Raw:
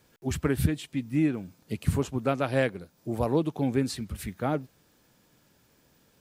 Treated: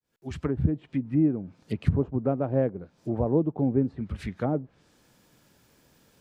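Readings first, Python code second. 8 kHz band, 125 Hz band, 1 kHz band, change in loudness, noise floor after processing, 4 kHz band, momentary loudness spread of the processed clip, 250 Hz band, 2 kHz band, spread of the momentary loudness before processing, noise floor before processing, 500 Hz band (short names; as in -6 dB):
under -15 dB, +2.0 dB, -3.5 dB, +1.5 dB, -65 dBFS, under -10 dB, 10 LU, +2.0 dB, -10.0 dB, 9 LU, -65 dBFS, +1.0 dB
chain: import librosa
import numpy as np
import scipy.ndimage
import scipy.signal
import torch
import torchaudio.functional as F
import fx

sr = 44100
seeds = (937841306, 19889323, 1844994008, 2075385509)

y = fx.fade_in_head(x, sr, length_s=0.79)
y = fx.env_lowpass_down(y, sr, base_hz=630.0, full_db=-25.5)
y = F.gain(torch.from_numpy(y), 2.5).numpy()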